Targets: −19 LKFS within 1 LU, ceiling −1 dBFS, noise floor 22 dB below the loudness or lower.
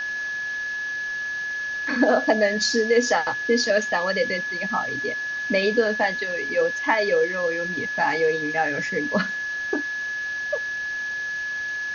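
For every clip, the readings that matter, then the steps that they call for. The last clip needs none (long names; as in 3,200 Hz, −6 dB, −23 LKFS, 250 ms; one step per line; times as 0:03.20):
interfering tone 1,700 Hz; level of the tone −26 dBFS; background noise floor −29 dBFS; target noise floor −46 dBFS; integrated loudness −23.5 LKFS; sample peak −6.5 dBFS; target loudness −19.0 LKFS
→ notch filter 1,700 Hz, Q 30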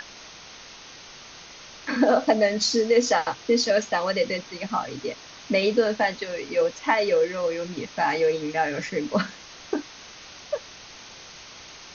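interfering tone none found; background noise floor −45 dBFS; target noise floor −47 dBFS
→ noise reduction from a noise print 6 dB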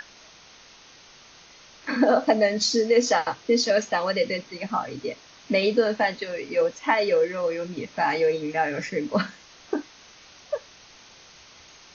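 background noise floor −51 dBFS; integrated loudness −24.5 LKFS; sample peak −7.5 dBFS; target loudness −19.0 LKFS
→ level +5.5 dB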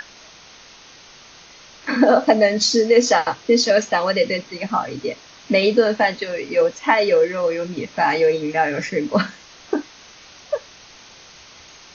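integrated loudness −19.0 LKFS; sample peak −2.0 dBFS; background noise floor −45 dBFS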